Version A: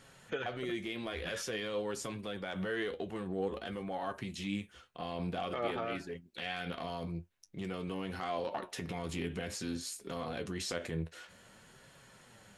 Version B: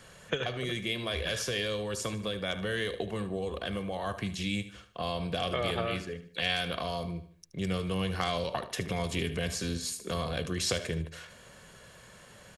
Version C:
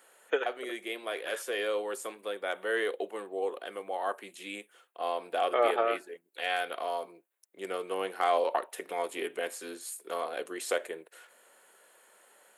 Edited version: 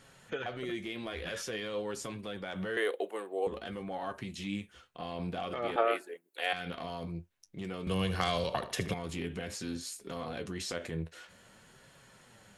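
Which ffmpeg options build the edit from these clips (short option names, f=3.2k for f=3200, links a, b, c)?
-filter_complex "[2:a]asplit=2[a][b];[0:a]asplit=4[c][d][e][f];[c]atrim=end=2.772[g];[a]atrim=start=2.768:end=3.472[h];[d]atrim=start=3.468:end=5.762[i];[b]atrim=start=5.758:end=6.532[j];[e]atrim=start=6.528:end=7.872[k];[1:a]atrim=start=7.868:end=8.942[l];[f]atrim=start=8.938[m];[g][h]acrossfade=d=0.004:c1=hsin:c2=hsin[n];[n][i]acrossfade=d=0.004:c1=hsin:c2=hsin[o];[o][j]acrossfade=d=0.004:c1=hsin:c2=hsin[p];[p][k]acrossfade=d=0.004:c1=hsin:c2=hsin[q];[q][l]acrossfade=d=0.004:c1=hsin:c2=hsin[r];[r][m]acrossfade=d=0.004:c1=hsin:c2=hsin"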